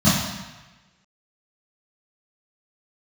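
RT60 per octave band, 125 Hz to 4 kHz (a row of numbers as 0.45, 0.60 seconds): 1.2, 0.95, 1.1, 1.2, 1.3, 1.1 seconds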